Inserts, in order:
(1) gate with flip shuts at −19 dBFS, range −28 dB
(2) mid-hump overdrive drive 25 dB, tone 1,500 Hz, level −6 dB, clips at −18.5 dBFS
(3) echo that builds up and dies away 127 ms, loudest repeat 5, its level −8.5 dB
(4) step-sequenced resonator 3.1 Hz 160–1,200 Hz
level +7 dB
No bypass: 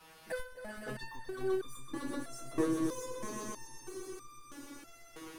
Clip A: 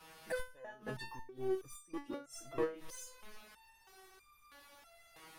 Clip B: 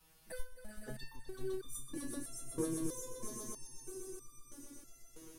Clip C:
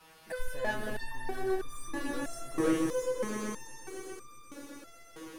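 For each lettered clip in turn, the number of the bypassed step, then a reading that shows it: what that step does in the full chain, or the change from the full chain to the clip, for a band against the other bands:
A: 3, change in integrated loudness −3.5 LU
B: 2, 8 kHz band +9.0 dB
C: 1, change in momentary loudness spread +2 LU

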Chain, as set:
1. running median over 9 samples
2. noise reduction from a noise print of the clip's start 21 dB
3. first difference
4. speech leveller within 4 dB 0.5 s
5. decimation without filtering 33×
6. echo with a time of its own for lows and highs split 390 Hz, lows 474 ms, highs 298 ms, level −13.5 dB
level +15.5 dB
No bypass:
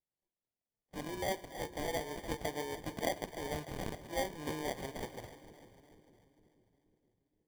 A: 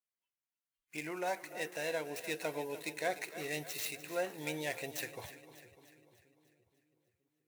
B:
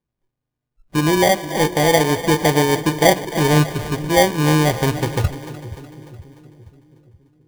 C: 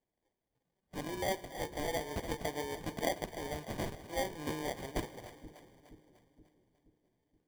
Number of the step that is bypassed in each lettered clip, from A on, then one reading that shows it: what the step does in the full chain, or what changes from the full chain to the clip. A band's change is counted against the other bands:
5, 125 Hz band −5.5 dB
3, 125 Hz band +6.0 dB
1, change in integrated loudness +1.0 LU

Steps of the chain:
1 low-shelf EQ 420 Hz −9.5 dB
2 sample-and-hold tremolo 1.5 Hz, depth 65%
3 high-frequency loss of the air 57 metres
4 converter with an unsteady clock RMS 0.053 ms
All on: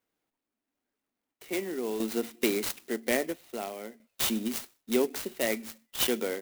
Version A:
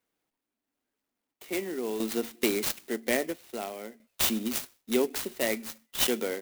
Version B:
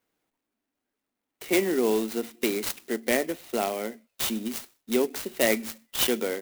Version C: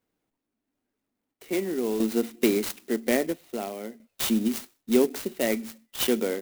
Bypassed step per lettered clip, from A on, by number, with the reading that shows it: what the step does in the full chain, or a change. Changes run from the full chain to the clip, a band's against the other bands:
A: 3, change in momentary loudness spread +1 LU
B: 2, change in integrated loudness +3.5 LU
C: 1, 125 Hz band +5.5 dB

